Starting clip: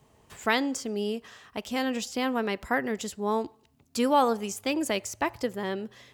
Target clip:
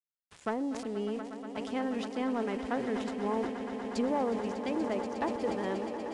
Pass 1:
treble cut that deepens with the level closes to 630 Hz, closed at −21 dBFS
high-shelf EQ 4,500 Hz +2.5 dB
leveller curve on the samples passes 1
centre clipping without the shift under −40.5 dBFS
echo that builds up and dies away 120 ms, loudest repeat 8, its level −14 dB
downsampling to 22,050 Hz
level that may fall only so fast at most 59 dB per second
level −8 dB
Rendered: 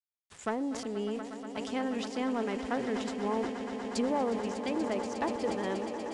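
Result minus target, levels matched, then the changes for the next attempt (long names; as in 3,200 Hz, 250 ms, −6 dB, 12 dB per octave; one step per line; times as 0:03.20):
8,000 Hz band +5.5 dB
change: high-shelf EQ 4,500 Hz −6.5 dB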